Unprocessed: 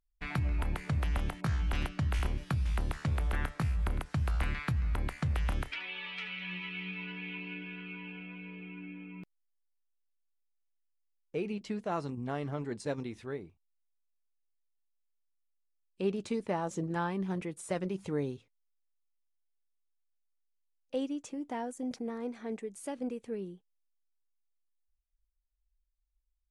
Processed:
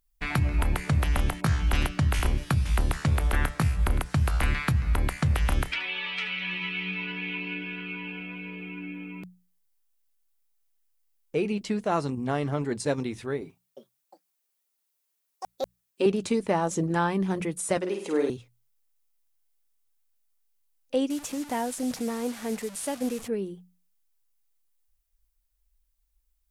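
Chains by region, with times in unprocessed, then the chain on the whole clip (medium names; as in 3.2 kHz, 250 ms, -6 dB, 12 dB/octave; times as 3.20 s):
13.41–16.06 s: high-pass 200 Hz + comb 7.5 ms, depth 96% + ever faster or slower copies 357 ms, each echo +6 st, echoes 2, each echo -6 dB
17.77–18.30 s: high-pass 280 Hz 24 dB/octave + treble shelf 9.1 kHz -4 dB + flutter echo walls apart 8.5 m, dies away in 0.56 s
21.10–23.28 s: one-bit delta coder 64 kbps, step -45 dBFS + peaking EQ 360 Hz -6.5 dB 0.42 oct
whole clip: treble shelf 8.3 kHz +10 dB; hum notches 60/120/180 Hz; trim +8 dB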